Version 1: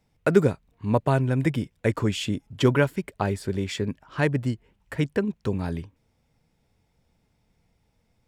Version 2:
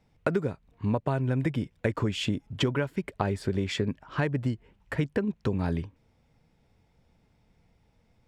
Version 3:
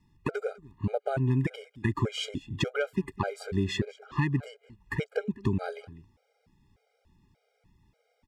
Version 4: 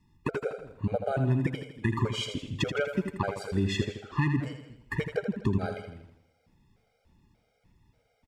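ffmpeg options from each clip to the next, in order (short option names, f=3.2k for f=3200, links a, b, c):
-af "highshelf=f=7.1k:g=-12,acompressor=threshold=-26dB:ratio=12,volume=3dB"
-af "aecho=1:1:201:0.0891,afftfilt=real='re*gt(sin(2*PI*1.7*pts/sr)*(1-2*mod(floor(b*sr/1024/410),2)),0)':imag='im*gt(sin(2*PI*1.7*pts/sr)*(1-2*mod(floor(b*sr/1024/410),2)),0)':win_size=1024:overlap=0.75,volume=2dB"
-af "aecho=1:1:81|162|243|324|405|486:0.398|0.195|0.0956|0.0468|0.023|0.0112"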